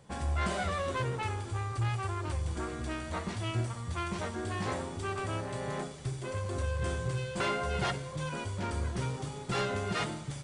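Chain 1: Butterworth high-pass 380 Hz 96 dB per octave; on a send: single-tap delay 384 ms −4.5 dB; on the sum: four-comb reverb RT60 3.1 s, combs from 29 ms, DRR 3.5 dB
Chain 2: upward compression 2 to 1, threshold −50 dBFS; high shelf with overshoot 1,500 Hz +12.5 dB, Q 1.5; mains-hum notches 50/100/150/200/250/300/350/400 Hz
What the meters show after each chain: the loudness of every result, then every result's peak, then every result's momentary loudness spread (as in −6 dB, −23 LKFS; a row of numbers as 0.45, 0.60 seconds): −34.5, −28.0 LKFS; −18.5, −10.5 dBFS; 7, 9 LU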